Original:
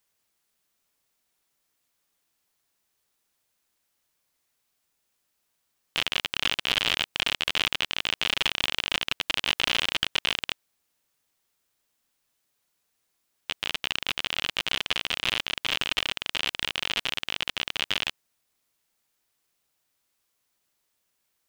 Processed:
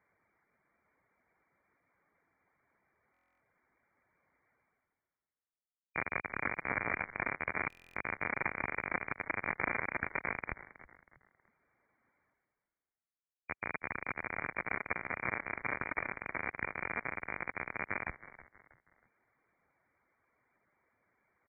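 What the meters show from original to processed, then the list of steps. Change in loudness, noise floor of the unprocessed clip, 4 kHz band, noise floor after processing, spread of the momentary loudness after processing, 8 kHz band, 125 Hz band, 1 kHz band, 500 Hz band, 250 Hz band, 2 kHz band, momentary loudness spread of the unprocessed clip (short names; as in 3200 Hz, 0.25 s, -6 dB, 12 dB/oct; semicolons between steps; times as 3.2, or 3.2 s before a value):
-10.5 dB, -76 dBFS, under -40 dB, under -85 dBFS, 7 LU, under -40 dB, -3.0 dB, -2.5 dB, -2.5 dB, -2.5 dB, -5.5 dB, 5 LU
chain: HPF 62 Hz; gate -56 dBFS, range -35 dB; reverb removal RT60 0.58 s; reverse; upward compressor, threshold -31 dBFS; reverse; brick-wall FIR low-pass 2400 Hz; frequency-shifting echo 0.32 s, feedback 36%, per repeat -90 Hz, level -16 dB; stuck buffer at 3.12/7.68, samples 1024, times 11; gain -1.5 dB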